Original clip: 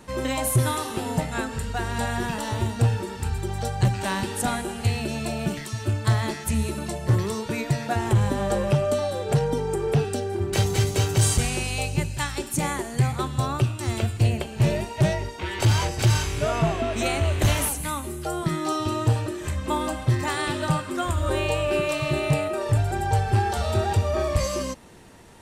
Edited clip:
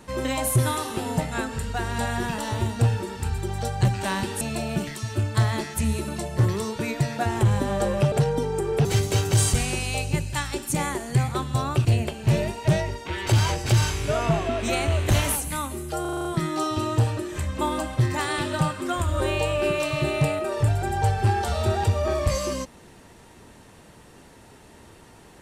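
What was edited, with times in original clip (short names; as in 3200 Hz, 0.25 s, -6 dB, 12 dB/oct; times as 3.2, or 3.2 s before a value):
4.41–5.11 cut
8.82–9.27 cut
10–10.69 cut
13.69–14.18 cut
18.34 stutter 0.04 s, 7 plays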